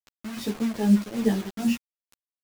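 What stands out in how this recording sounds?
tremolo triangle 2.5 Hz, depth 90%; a quantiser's noise floor 6-bit, dither none; a shimmering, thickened sound

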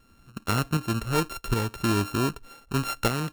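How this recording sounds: a buzz of ramps at a fixed pitch in blocks of 32 samples; tremolo saw up 1.3 Hz, depth 50%

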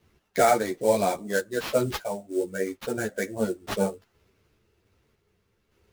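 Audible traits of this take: aliases and images of a low sample rate 8600 Hz, jitter 20%; random-step tremolo; a shimmering, thickened sound

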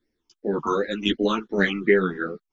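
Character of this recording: phasing stages 8, 2.7 Hz, lowest notch 510–1100 Hz; tremolo saw down 1.9 Hz, depth 45%; a shimmering, thickened sound

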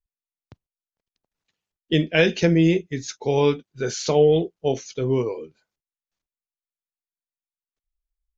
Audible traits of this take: noise floor -96 dBFS; spectral tilt -5.5 dB/oct

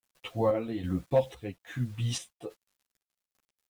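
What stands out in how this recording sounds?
a quantiser's noise floor 10-bit, dither none; chopped level 1.2 Hz, depth 60%, duty 60%; a shimmering, thickened sound

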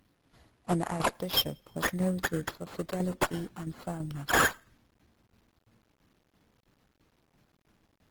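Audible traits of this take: aliases and images of a low sample rate 8500 Hz, jitter 0%; tremolo saw down 3 Hz, depth 60%; a quantiser's noise floor 12-bit, dither none; Opus

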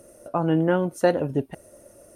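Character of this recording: noise floor -53 dBFS; spectral tilt -5.5 dB/oct

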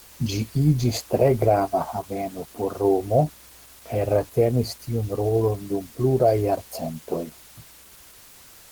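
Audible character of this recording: a quantiser's noise floor 8-bit, dither triangular; Opus

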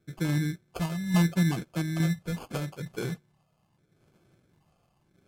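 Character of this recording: phasing stages 8, 0.78 Hz, lowest notch 340–2000 Hz; random-step tremolo 3.5 Hz, depth 55%; aliases and images of a low sample rate 1900 Hz, jitter 0%; MP3

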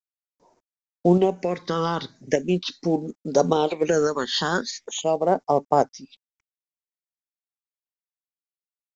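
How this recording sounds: tremolo saw up 0.85 Hz, depth 40%; a quantiser's noise floor 12-bit, dither none; phasing stages 6, 0.4 Hz, lowest notch 640–3300 Hz; µ-law

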